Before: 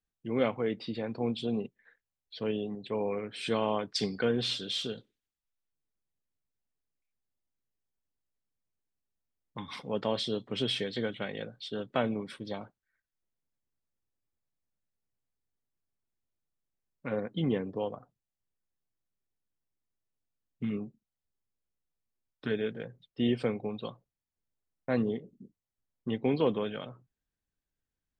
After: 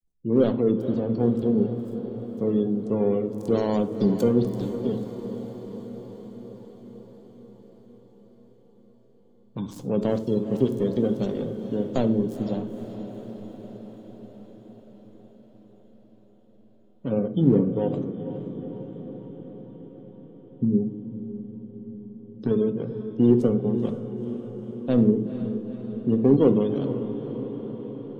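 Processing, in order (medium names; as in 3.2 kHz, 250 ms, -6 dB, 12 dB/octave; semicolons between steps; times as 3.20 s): dead-time distortion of 0.24 ms; spectral gate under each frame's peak -25 dB strong; FFT filter 360 Hz 0 dB, 2.1 kHz -20 dB, 6.6 kHz +1 dB; in parallel at -10 dB: hard clipper -25.5 dBFS, distortion -16 dB; on the sum: echo that smears into a reverb 475 ms, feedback 69%, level -11 dB; on a send at -8.5 dB: reverberation RT60 0.50 s, pre-delay 4 ms; on the sum: trim +8.5 dB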